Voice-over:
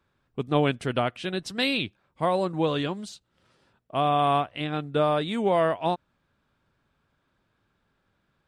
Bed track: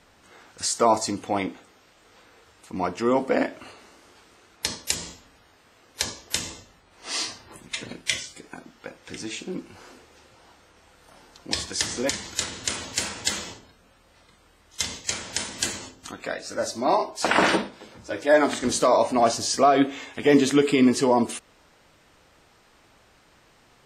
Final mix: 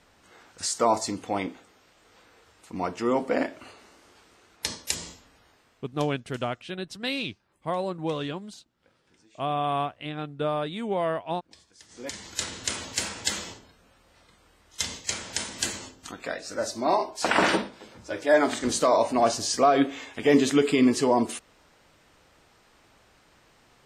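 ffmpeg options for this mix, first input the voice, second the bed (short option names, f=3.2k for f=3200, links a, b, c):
-filter_complex "[0:a]adelay=5450,volume=-4.5dB[a];[1:a]volume=22dB,afade=t=out:st=5.48:d=0.6:silence=0.0630957,afade=t=in:st=11.88:d=0.6:silence=0.0562341[b];[a][b]amix=inputs=2:normalize=0"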